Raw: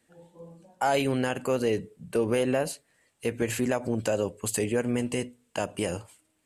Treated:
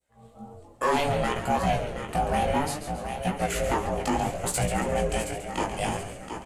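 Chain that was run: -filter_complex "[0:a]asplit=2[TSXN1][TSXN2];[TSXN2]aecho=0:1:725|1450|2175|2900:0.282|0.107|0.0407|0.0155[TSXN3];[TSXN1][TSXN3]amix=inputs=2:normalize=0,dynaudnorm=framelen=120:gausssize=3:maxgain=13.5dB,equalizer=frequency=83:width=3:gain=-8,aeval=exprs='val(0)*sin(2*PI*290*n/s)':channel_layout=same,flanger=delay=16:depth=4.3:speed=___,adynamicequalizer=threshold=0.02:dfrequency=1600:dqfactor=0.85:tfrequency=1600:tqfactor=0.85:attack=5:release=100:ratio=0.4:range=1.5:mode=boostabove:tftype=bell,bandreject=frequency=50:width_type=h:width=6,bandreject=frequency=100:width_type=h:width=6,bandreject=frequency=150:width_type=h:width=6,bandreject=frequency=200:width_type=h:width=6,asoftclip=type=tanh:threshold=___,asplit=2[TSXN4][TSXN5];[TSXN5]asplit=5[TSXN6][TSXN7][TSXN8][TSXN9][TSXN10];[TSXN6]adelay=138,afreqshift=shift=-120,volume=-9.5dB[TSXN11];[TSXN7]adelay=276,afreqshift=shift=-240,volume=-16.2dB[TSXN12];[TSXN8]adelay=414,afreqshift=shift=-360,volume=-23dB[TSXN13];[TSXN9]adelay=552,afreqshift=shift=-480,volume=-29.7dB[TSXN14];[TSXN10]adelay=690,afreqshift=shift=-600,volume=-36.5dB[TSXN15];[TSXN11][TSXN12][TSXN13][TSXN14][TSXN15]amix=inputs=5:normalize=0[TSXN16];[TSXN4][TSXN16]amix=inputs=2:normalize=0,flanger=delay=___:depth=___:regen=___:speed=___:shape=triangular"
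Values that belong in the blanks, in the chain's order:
0.63, -10dB, 9.7, 8.5, 73, 1.8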